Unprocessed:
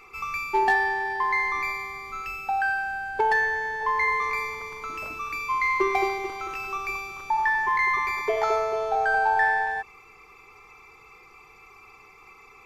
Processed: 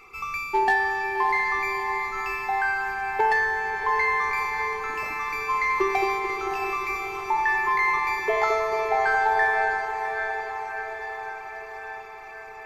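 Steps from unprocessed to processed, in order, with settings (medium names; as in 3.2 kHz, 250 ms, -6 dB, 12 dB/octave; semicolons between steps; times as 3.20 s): echo that smears into a reverb 642 ms, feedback 65%, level -7 dB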